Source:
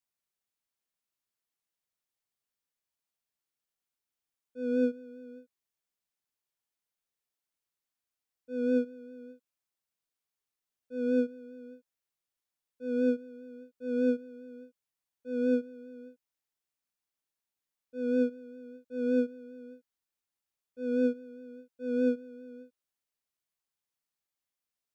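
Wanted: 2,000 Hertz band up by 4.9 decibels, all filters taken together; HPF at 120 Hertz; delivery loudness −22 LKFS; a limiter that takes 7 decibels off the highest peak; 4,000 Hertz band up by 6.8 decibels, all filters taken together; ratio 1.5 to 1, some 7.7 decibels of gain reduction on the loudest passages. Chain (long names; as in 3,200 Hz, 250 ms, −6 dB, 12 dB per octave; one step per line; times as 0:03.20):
high-pass filter 120 Hz
parametric band 2,000 Hz +7 dB
parametric band 4,000 Hz +6 dB
downward compressor 1.5 to 1, threshold −44 dBFS
level +22 dB
brickwall limiter −11 dBFS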